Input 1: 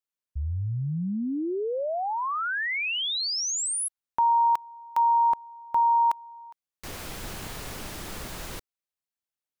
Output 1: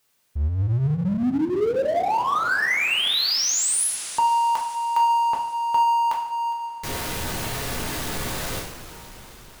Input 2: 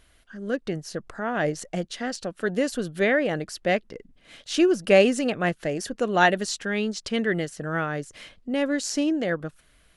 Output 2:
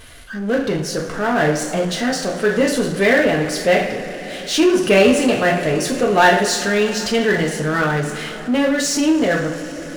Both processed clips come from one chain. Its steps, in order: two-slope reverb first 0.47 s, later 4.8 s, from -21 dB, DRR -1 dB; power-law curve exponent 0.7

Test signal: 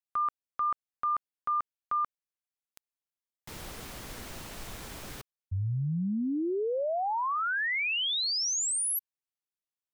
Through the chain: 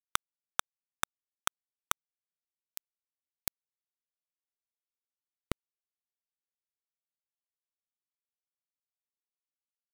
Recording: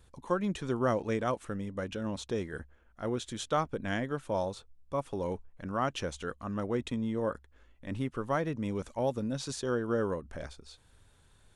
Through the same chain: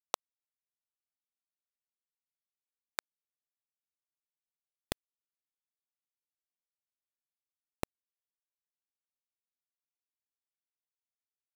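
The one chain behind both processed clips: gate -54 dBFS, range -26 dB; in parallel at -0.5 dB: negative-ratio compressor -37 dBFS, ratio -1; on the sum: fuzz box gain 45 dB, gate -46 dBFS; tremolo 0.53 Hz, depth 33%; low shelf 380 Hz -4 dB; flipped gate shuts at -28 dBFS, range -25 dB; high shelf 4600 Hz +11.5 dB; bit-crush 4-bit

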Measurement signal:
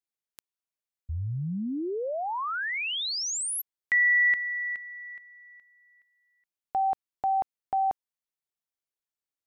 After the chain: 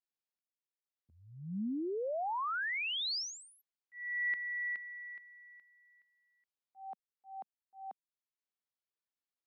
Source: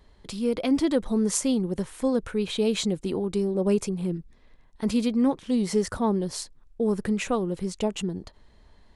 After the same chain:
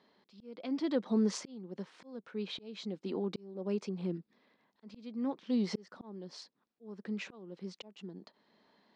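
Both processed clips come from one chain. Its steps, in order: Chebyshev band-pass 200–5000 Hz, order 3; auto swell 0.758 s; gain -4.5 dB

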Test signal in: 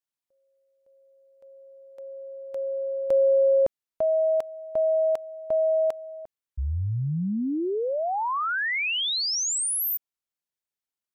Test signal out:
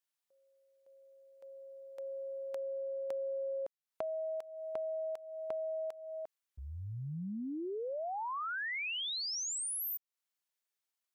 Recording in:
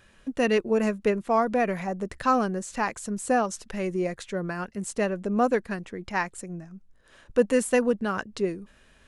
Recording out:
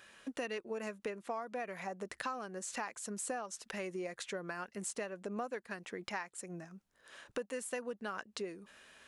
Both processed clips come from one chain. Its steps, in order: HPF 640 Hz 6 dB/oct; compressor 6:1, threshold -40 dBFS; gain +2 dB

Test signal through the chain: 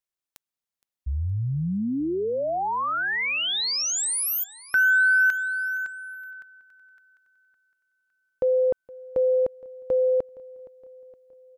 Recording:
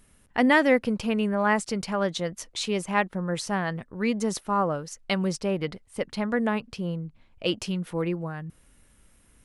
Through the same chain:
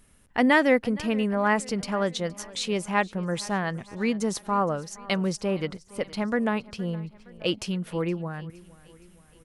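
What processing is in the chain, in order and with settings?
feedback echo 0.467 s, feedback 55%, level -21 dB

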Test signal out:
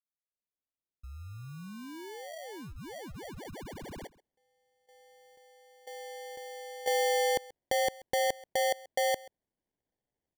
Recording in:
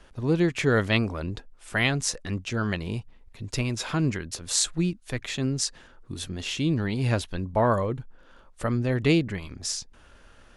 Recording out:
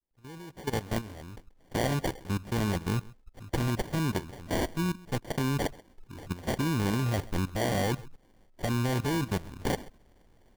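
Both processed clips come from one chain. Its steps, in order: opening faded in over 2.80 s; level quantiser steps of 16 dB; sample-and-hold 34×; on a send: echo 0.133 s -21.5 dB; on the sum: gain +4.5 dB

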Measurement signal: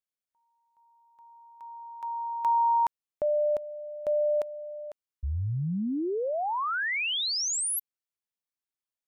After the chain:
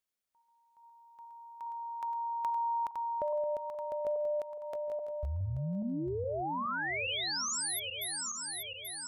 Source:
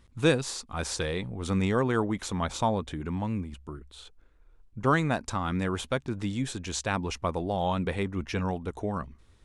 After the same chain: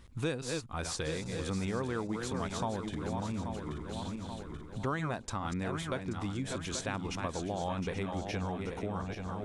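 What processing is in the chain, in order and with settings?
regenerating reverse delay 0.416 s, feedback 58%, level -7 dB; compressor 2.5:1, threshold -41 dBFS; gain +3.5 dB

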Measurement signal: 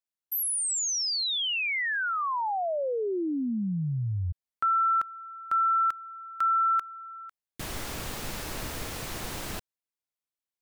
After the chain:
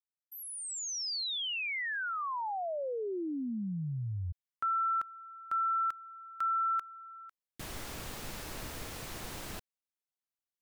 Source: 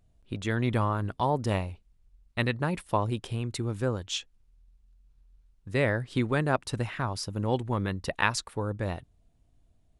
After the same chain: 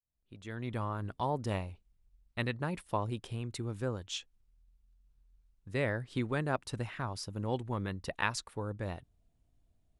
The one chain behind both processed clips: opening faded in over 1.14 s; gain -6.5 dB

